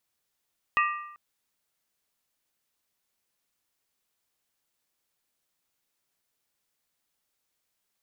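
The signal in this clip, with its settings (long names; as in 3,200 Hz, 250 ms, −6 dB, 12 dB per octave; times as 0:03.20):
struck skin length 0.39 s, lowest mode 1,190 Hz, modes 4, decay 0.85 s, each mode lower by 3.5 dB, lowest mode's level −20 dB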